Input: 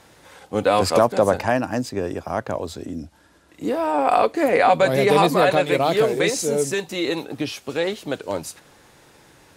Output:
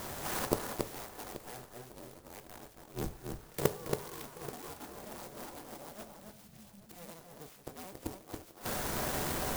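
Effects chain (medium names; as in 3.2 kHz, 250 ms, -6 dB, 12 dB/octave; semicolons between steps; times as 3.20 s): cycle switcher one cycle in 2, inverted; gain riding within 4 dB 2 s; integer overflow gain 10 dB; 2.85–3.70 s: level held to a coarse grid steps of 23 dB; inverted gate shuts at -24 dBFS, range -40 dB; 6.03–6.83 s: Chebyshev band-stop 210–7100 Hz, order 5; echo whose repeats swap between lows and highs 277 ms, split 2.2 kHz, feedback 54%, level -4.5 dB; reverberation, pre-delay 3 ms, DRR 9.5 dB; sampling jitter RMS 0.098 ms; trim +11 dB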